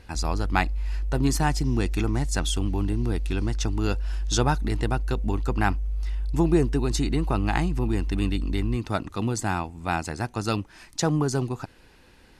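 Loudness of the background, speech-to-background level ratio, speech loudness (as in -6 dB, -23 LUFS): -31.5 LUFS, 4.0 dB, -27.5 LUFS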